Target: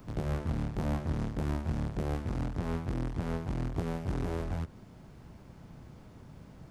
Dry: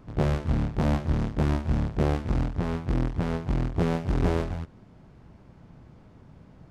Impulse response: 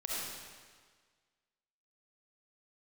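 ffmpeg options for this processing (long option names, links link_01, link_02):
-filter_complex "[0:a]acrossover=split=90|2100[link_01][link_02][link_03];[link_01]acompressor=threshold=-34dB:ratio=4[link_04];[link_02]acompressor=threshold=-30dB:ratio=4[link_05];[link_03]acompressor=threshold=-56dB:ratio=4[link_06];[link_04][link_05][link_06]amix=inputs=3:normalize=0,alimiter=limit=-23dB:level=0:latency=1:release=116,aemphasis=mode=production:type=50kf"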